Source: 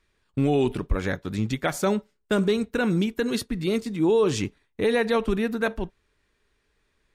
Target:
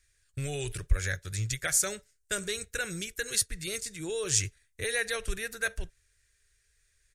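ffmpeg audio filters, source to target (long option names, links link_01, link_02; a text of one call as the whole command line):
ffmpeg -i in.wav -af "firequalizer=gain_entry='entry(100,0);entry(240,-29);entry(340,-16);entry(550,-11);entry(920,-21);entry(1600,0);entry(3100,-4);entry(6400,11);entry(9600,13);entry(14000,3)':delay=0.05:min_phase=1" out.wav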